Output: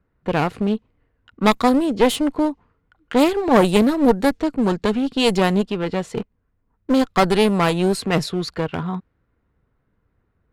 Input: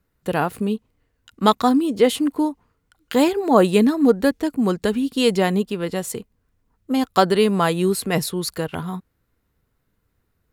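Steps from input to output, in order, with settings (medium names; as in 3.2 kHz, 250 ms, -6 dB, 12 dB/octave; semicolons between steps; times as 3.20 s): level-controlled noise filter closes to 1.9 kHz, open at -11.5 dBFS; 6.17–7.02 s: waveshaping leveller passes 2; one-sided clip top -24.5 dBFS; trim +3 dB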